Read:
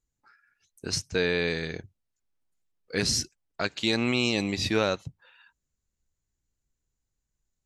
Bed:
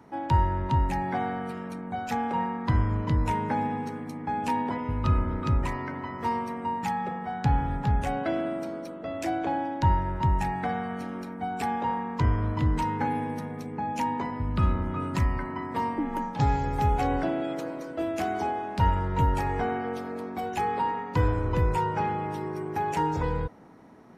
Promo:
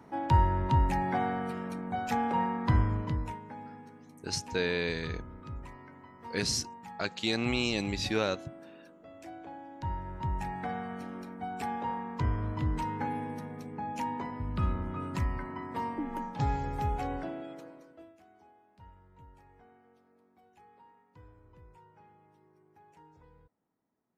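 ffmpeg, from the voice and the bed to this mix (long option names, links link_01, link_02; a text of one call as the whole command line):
ffmpeg -i stem1.wav -i stem2.wav -filter_complex "[0:a]adelay=3400,volume=-4.5dB[link_01];[1:a]volume=10dB,afade=type=out:start_time=2.73:duration=0.67:silence=0.158489,afade=type=in:start_time=9.62:duration=1.13:silence=0.281838,afade=type=out:start_time=16.64:duration=1.54:silence=0.0530884[link_02];[link_01][link_02]amix=inputs=2:normalize=0" out.wav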